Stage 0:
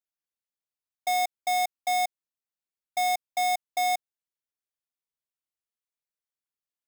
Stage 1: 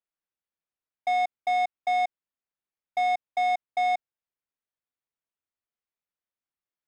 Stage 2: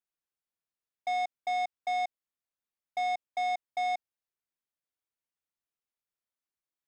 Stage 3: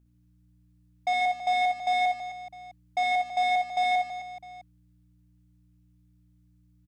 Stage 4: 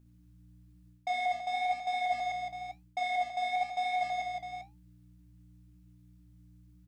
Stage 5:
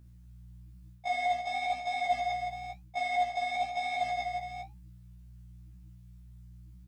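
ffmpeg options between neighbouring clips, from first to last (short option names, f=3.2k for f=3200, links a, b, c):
-af "lowpass=2.6k,volume=1.5dB"
-af "asoftclip=type=tanh:threshold=-23.5dB,volume=-3dB"
-filter_complex "[0:a]aeval=exprs='val(0)+0.000447*(sin(2*PI*60*n/s)+sin(2*PI*2*60*n/s)/2+sin(2*PI*3*60*n/s)/3+sin(2*PI*4*60*n/s)/4+sin(2*PI*5*60*n/s)/5)':c=same,asplit=2[a][b];[b]aecho=0:1:60|144|261.6|426.2|656.7:0.631|0.398|0.251|0.158|0.1[c];[a][c]amix=inputs=2:normalize=0,volume=5dB"
-af "areverse,acompressor=threshold=-34dB:ratio=6,areverse,flanger=delay=8.9:depth=8.5:regen=-61:speed=1:shape=triangular,volume=8dB"
-af "afftfilt=real='re*1.73*eq(mod(b,3),0)':imag='im*1.73*eq(mod(b,3),0)':win_size=2048:overlap=0.75,volume=6.5dB"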